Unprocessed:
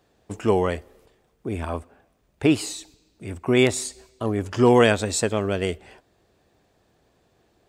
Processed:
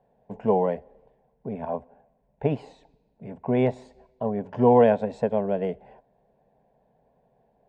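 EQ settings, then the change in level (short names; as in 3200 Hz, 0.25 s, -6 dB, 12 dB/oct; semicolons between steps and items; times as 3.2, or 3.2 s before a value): synth low-pass 1100 Hz, resonance Q 2.4; bell 130 Hz +4 dB 0.21 oct; fixed phaser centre 330 Hz, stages 6; 0.0 dB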